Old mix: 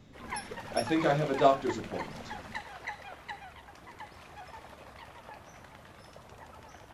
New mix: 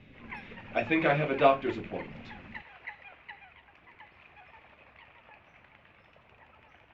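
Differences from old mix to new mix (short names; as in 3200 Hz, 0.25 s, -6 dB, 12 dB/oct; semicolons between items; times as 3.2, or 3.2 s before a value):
background -9.5 dB; master: add synth low-pass 2500 Hz, resonance Q 4.1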